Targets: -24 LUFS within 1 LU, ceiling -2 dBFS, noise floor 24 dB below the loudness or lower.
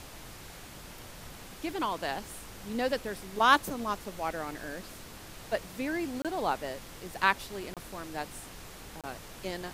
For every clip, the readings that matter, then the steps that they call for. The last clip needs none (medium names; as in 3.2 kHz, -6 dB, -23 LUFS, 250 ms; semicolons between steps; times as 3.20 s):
dropouts 3; longest dropout 27 ms; noise floor -47 dBFS; noise floor target -57 dBFS; loudness -32.5 LUFS; peak level -8.5 dBFS; loudness target -24.0 LUFS
-> interpolate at 6.22/7.74/9.01 s, 27 ms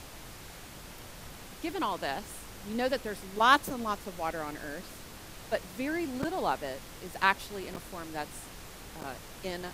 dropouts 0; noise floor -47 dBFS; noise floor target -57 dBFS
-> noise print and reduce 10 dB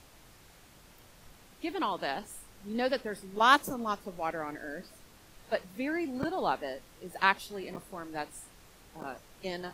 noise floor -57 dBFS; loudness -32.5 LUFS; peak level -8.5 dBFS; loudness target -24.0 LUFS
-> trim +8.5 dB; peak limiter -2 dBFS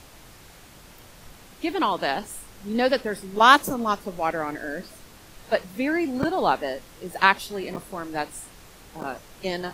loudness -24.5 LUFS; peak level -2.0 dBFS; noise floor -49 dBFS